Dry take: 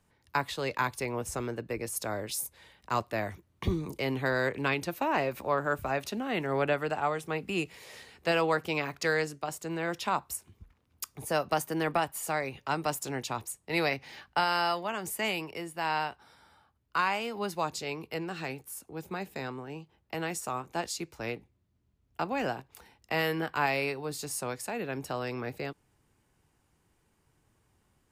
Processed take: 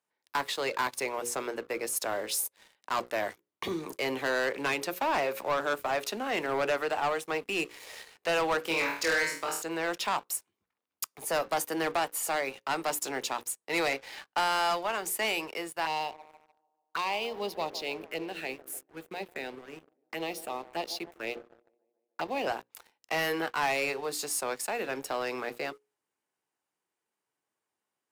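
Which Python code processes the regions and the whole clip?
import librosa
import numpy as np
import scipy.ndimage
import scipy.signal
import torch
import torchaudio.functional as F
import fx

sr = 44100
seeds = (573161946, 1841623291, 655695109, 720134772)

y = fx.chain(x, sr, fx.peak_eq(hz=720.0, db=-13.0, octaves=0.22),
    fx.room_flutter(wall_m=4.2, rt60_s=0.45), at=(8.62, 9.62))
y = fx.chain(y, sr, fx.backlash(play_db=-50.5),
    fx.env_phaser(low_hz=450.0, high_hz=1500.0, full_db=-31.0),
    fx.echo_wet_bandpass(ms=148, feedback_pct=65, hz=420.0, wet_db=-13.5), at=(15.85, 22.47))
y = scipy.signal.sosfilt(scipy.signal.butter(2, 390.0, 'highpass', fs=sr, output='sos'), y)
y = fx.hum_notches(y, sr, base_hz=60, count=9)
y = fx.leveller(y, sr, passes=3)
y = y * 10.0 ** (-6.5 / 20.0)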